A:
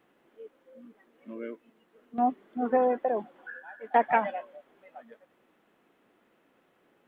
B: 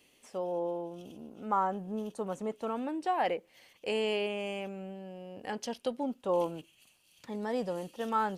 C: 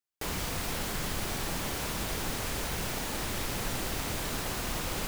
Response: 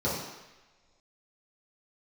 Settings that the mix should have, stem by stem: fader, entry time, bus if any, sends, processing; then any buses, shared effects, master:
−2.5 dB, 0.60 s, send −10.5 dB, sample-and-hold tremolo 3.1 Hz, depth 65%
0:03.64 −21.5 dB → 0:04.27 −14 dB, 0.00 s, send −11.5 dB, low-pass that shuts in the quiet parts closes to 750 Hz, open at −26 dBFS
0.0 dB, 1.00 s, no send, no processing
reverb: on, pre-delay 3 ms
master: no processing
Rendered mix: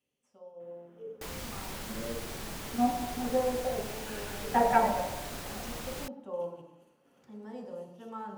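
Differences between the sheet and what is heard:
stem B: missing low-pass that shuts in the quiet parts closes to 750 Hz, open at −26 dBFS
stem C 0.0 dB → −7.0 dB

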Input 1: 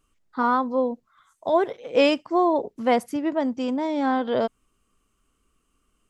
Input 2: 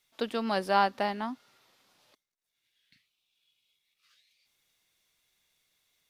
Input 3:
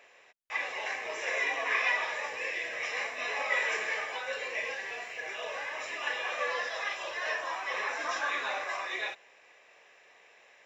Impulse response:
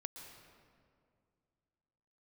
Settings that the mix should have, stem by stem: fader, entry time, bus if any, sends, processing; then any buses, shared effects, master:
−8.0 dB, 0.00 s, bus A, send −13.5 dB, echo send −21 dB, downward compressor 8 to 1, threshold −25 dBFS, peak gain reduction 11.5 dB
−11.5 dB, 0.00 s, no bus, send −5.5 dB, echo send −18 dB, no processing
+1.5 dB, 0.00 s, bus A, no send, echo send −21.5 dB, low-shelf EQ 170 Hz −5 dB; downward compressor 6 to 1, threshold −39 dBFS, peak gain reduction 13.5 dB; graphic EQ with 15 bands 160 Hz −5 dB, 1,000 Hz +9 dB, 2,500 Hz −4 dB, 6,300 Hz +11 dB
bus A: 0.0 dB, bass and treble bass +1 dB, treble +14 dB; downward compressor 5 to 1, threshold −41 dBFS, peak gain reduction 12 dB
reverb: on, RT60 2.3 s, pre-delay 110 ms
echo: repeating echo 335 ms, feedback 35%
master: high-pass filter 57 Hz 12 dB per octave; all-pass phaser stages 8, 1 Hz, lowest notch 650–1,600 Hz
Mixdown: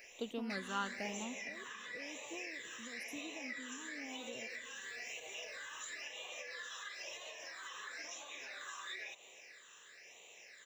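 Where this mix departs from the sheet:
stem 1 −8.0 dB → −16.5 dB
stem 3: missing graphic EQ with 15 bands 160 Hz −5 dB, 1,000 Hz +9 dB, 2,500 Hz −4 dB, 6,300 Hz +11 dB
master: missing high-pass filter 57 Hz 12 dB per octave

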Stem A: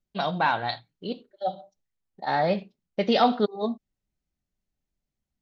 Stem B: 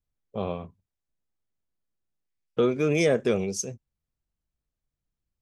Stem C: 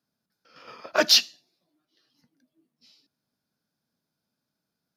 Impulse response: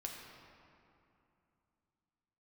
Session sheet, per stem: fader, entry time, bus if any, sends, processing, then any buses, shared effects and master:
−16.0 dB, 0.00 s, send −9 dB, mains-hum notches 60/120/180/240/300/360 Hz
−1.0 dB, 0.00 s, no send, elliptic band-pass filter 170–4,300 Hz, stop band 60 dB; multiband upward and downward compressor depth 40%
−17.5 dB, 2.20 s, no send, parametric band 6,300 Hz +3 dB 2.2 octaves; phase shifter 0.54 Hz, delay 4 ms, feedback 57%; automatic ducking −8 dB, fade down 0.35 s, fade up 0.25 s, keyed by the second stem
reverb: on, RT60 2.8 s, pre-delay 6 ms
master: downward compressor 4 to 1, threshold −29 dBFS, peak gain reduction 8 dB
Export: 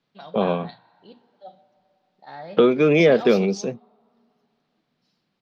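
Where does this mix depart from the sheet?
stem B −1.0 dB → +8.5 dB
stem C: missing parametric band 6,300 Hz +3 dB 2.2 octaves
master: missing downward compressor 4 to 1, threshold −29 dBFS, peak gain reduction 8 dB

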